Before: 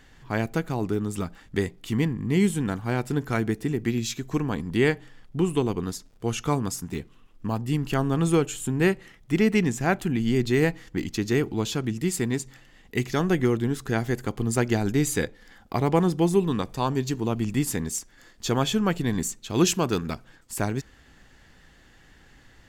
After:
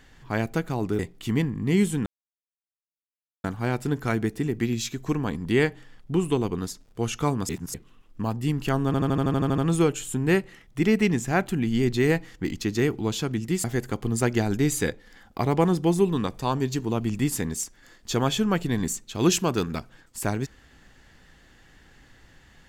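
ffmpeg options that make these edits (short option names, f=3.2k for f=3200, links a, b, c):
-filter_complex "[0:a]asplit=15[a][b][c][d][e][f][g][h][i][j][k][l][m][n][o];[a]atrim=end=0.992[p];[b]atrim=start=1.618:end=2.69,asetpts=PTS-STARTPTS,afade=t=out:st=1.068:d=0.004:c=hsin,apad=pad_dur=1.38[q];[c]atrim=start=2.69:end=6.742,asetpts=PTS-STARTPTS,afade=t=in:d=0.004:c=hsin[r];[d]atrim=start=6.738:end=6.992,asetpts=PTS-STARTPTS,areverse[s];[e]atrim=start=6.988:end=8.192[t];[f]atrim=start=8.108:end=8.192[u];[g]atrim=start=8.108:end=8.192[v];[h]atrim=start=8.108:end=8.192[w];[i]atrim=start=8.108:end=8.192[x];[j]atrim=start=8.108:end=8.192[y];[k]atrim=start=8.108:end=8.192[z];[l]atrim=start=8.108:end=8.192[aa];[m]atrim=start=8.108:end=8.192[ab];[n]atrim=start=8.108:end=12.172[ac];[o]atrim=start=13.988[ad];[q][r]concat=n=2:v=0:a=1[ae];[p][ae]acrossfade=d=0.004:c1=hsin:c2=hsin[af];[af][s]acrossfade=d=0.004:c1=hsin:c2=hsin[ag];[ag][t]acrossfade=d=0.004:c1=hsin:c2=hsin[ah];[ah][u]acrossfade=d=0.004:c1=hsin:c2=hsin[ai];[ai][v]acrossfade=d=0.004:c1=hsin:c2=hsin[aj];[aj][w]acrossfade=d=0.004:c1=hsin:c2=hsin[ak];[ak][x]acrossfade=d=0.004:c1=hsin:c2=hsin[al];[al][y]acrossfade=d=0.004:c1=hsin:c2=hsin[am];[am][z]acrossfade=d=0.004:c1=hsin:c2=hsin[an];[an][aa]acrossfade=d=0.004:c1=hsin:c2=hsin[ao];[ao][ab]acrossfade=d=0.004:c1=hsin:c2=hsin[ap];[ap][ac]acrossfade=d=0.004:c1=hsin:c2=hsin[aq];[aq][ad]acrossfade=d=0.004:c1=hsin:c2=hsin"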